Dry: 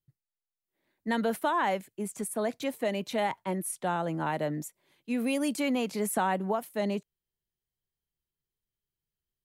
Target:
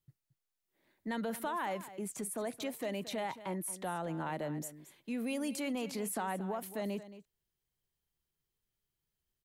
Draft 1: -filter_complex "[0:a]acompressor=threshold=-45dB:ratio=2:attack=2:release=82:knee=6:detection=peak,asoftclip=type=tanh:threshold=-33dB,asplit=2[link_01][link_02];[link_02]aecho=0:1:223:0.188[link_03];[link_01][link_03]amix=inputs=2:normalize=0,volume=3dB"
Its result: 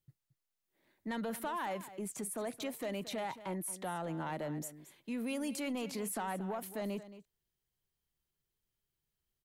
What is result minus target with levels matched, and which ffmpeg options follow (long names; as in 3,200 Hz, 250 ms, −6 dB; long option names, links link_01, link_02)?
soft clipping: distortion +16 dB
-filter_complex "[0:a]acompressor=threshold=-45dB:ratio=2:attack=2:release=82:knee=6:detection=peak,asoftclip=type=tanh:threshold=-23.5dB,asplit=2[link_01][link_02];[link_02]aecho=0:1:223:0.188[link_03];[link_01][link_03]amix=inputs=2:normalize=0,volume=3dB"